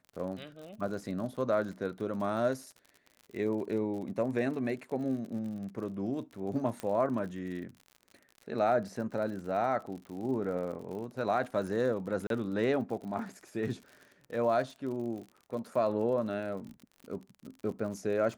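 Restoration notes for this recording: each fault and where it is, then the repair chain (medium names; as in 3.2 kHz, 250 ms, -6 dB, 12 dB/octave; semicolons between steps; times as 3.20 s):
crackle 59 per s -41 dBFS
6.80 s: pop -23 dBFS
12.27–12.30 s: dropout 32 ms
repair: de-click; interpolate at 12.27 s, 32 ms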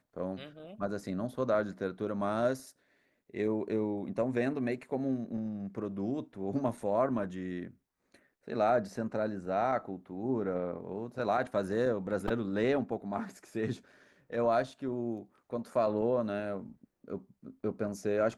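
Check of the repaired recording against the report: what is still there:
nothing left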